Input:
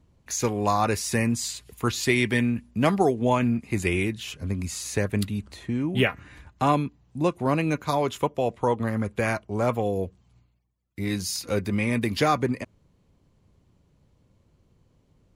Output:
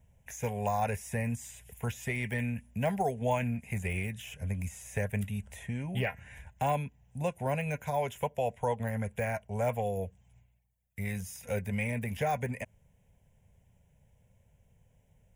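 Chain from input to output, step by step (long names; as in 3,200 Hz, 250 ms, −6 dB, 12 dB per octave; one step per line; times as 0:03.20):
phaser with its sweep stopped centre 1,200 Hz, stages 6
in parallel at −2.5 dB: downward compressor, threshold −34 dBFS, peak gain reduction 14 dB
on the sum: high-shelf EQ 4,700 Hz +8 dB
de-essing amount 80%
level −5.5 dB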